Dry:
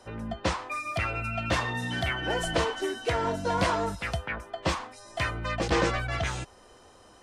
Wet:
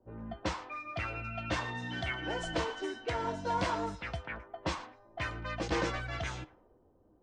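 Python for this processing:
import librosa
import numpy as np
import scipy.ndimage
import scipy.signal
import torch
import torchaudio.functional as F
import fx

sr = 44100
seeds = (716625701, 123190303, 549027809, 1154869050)

y = scipy.signal.sosfilt(scipy.signal.butter(4, 7800.0, 'lowpass', fs=sr, output='sos'), x)
y = fx.comb_fb(y, sr, f0_hz=310.0, decay_s=0.15, harmonics='odd', damping=0.0, mix_pct=60)
y = fx.echo_thinned(y, sr, ms=113, feedback_pct=37, hz=420.0, wet_db=-18.5)
y = fx.env_lowpass(y, sr, base_hz=360.0, full_db=-32.0)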